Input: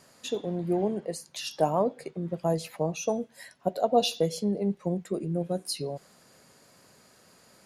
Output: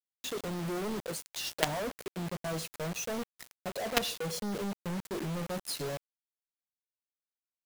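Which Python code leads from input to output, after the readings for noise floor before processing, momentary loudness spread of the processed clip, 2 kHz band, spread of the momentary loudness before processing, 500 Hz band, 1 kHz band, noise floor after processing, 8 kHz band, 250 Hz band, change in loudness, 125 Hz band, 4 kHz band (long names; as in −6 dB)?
−59 dBFS, 7 LU, +5.5 dB, 11 LU, −9.0 dB, −7.5 dB, below −85 dBFS, 0.0 dB, −7.0 dB, −6.0 dB, −5.5 dB, −1.5 dB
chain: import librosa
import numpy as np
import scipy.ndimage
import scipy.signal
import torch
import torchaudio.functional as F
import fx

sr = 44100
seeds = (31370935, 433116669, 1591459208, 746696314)

y = fx.quant_companded(x, sr, bits=2)
y = y * librosa.db_to_amplitude(-8.5)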